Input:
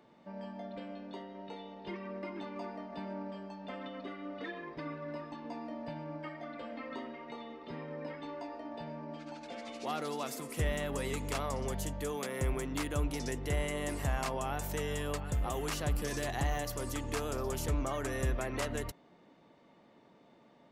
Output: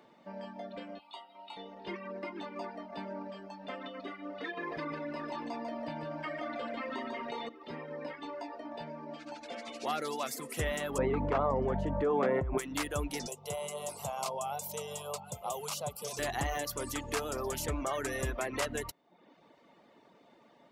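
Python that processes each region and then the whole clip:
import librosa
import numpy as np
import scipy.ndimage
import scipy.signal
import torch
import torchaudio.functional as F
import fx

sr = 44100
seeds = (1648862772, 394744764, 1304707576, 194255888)

y = fx.chain(x, sr, fx.highpass(hz=460.0, slope=12),
    fx.peak_eq(hz=6900.0, db=13.0, octaves=1.3),
    fx.fixed_phaser(hz=1700.0, stages=6), at=(0.99, 1.57))
y = fx.chain(y, sr, fx.echo_single(ms=147, db=-5.0),
    fx.env_flatten(amount_pct=70), at=(4.57, 7.49))
y = fx.chain(y, sr, fx.lowpass(hz=1100.0, slope=12),
    fx.env_flatten(amount_pct=100), at=(10.98, 12.58))
y = fx.chain(y, sr, fx.highpass(hz=120.0, slope=24),
    fx.fixed_phaser(hz=730.0, stages=4), at=(13.27, 16.19))
y = fx.dereverb_blind(y, sr, rt60_s=0.65)
y = fx.low_shelf(y, sr, hz=200.0, db=-9.5)
y = y * librosa.db_to_amplitude(4.0)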